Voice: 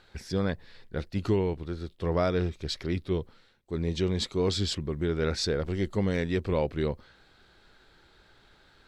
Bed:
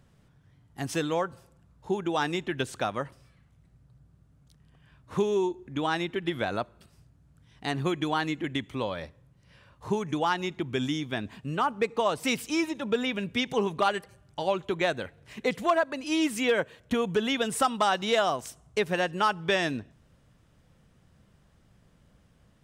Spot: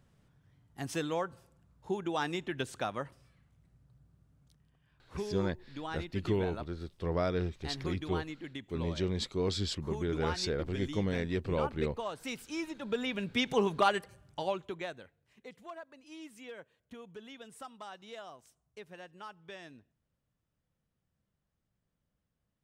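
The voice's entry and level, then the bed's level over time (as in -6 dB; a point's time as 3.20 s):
5.00 s, -5.0 dB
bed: 4.46 s -5.5 dB
4.80 s -12 dB
12.39 s -12 dB
13.48 s -1.5 dB
14.25 s -1.5 dB
15.30 s -22 dB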